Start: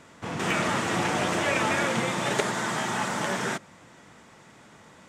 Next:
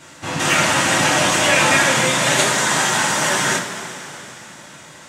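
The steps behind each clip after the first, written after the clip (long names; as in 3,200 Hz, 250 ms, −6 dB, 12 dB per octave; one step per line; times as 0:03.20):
high-shelf EQ 2,200 Hz +9.5 dB
coupled-rooms reverb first 0.24 s, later 3.6 s, from −18 dB, DRR −5.5 dB
level +1 dB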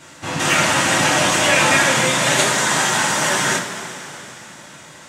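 no processing that can be heard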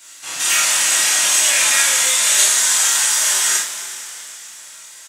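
first difference
on a send: ambience of single reflections 29 ms −3.5 dB, 50 ms −5 dB
on the sum: level +5.5 dB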